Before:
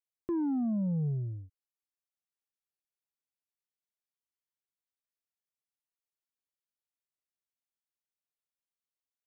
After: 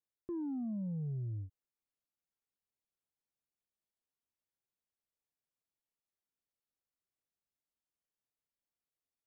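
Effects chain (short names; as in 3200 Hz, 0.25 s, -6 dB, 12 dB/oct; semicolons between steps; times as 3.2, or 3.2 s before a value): tilt shelf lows +5.5 dB; reverse; compressor 5:1, threshold -37 dBFS, peak gain reduction 11.5 dB; reverse; vibrato 0.85 Hz 19 cents; gain -1.5 dB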